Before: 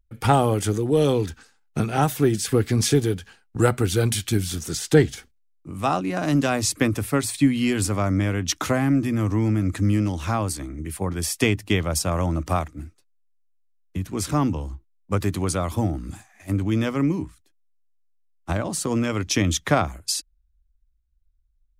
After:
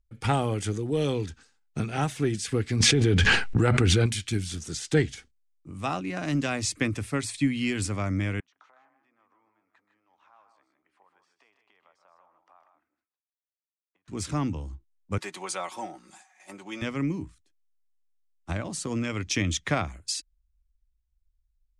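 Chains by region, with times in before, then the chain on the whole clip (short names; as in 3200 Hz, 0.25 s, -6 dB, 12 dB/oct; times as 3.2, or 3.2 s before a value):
2.8–4.06 LPF 2900 Hz 6 dB/oct + fast leveller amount 100%
8.4–14.08 compressor 8:1, threshold -33 dBFS + ladder band-pass 1100 Hz, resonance 40% + tapped delay 0.126/0.156 s -12.5/-8 dB
15.18–16.82 HPF 540 Hz + bell 860 Hz +8.5 dB 0.38 oct + comb 5.4 ms, depth 67%
whole clip: dynamic EQ 2200 Hz, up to +6 dB, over -41 dBFS, Q 1.5; LPF 9100 Hz 24 dB/oct; bell 830 Hz -4 dB 2.9 oct; gain -5 dB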